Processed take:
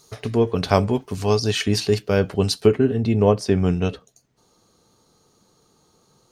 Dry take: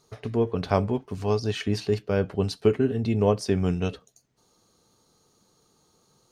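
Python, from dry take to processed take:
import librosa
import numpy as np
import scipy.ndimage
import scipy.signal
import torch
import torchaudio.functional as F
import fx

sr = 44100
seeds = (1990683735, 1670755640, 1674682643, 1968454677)

y = fx.high_shelf(x, sr, hz=3500.0, db=fx.steps((0.0, 10.0), (2.65, -3.0)))
y = F.gain(torch.from_numpy(y), 5.0).numpy()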